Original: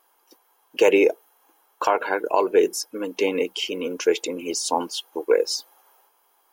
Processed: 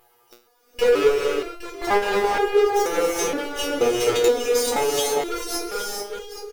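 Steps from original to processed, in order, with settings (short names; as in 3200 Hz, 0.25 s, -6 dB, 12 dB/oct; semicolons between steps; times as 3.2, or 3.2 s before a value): minimum comb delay 2.4 ms; bell 550 Hz +8 dB 0.95 oct; level quantiser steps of 10 dB; sample leveller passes 5; upward compressor, threshold -26 dBFS; on a send: feedback echo 0.815 s, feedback 23%, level -9 dB; on the sum: non-linear reverb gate 0.47 s rising, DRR 2.5 dB; stepped resonator 2.1 Hz 120–410 Hz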